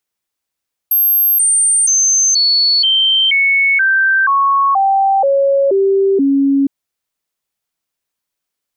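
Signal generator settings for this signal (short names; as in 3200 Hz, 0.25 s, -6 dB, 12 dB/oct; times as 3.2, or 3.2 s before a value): stepped sine 12500 Hz down, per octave 2, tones 12, 0.48 s, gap 0.00 s -9 dBFS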